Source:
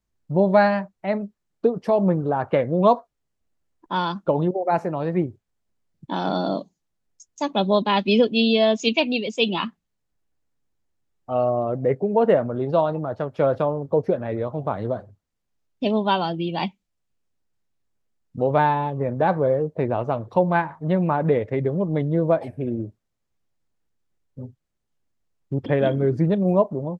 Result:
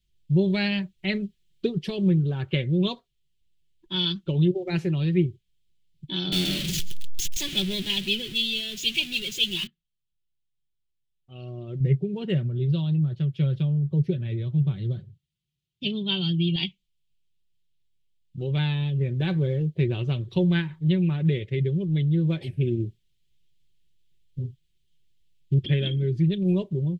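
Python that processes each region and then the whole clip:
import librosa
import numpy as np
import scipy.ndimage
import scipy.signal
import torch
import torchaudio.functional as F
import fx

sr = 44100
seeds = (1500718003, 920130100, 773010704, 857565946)

y = fx.chain(x, sr, fx.zero_step(step_db=-20.0),
    fx.echo_feedback(ms=134, feedback_pct=23, wet_db=-20), at=(6.32, 9.67))
y = fx.chain(y, sr, fx.highpass(hz=54.0, slope=12),
    fx.peak_eq(hz=140.0, db=10.5, octaves=1.1), at=(11.8, 16.56))
y = fx.curve_eq(y, sr, hz=(150.0, 220.0, 360.0, 640.0, 1100.0, 3200.0, 5600.0), db=(0, -15, -8, -28, -26, 7, -5))
y = fx.rider(y, sr, range_db=10, speed_s=0.5)
y = y + 0.44 * np.pad(y, (int(5.3 * sr / 1000.0), 0))[:len(y)]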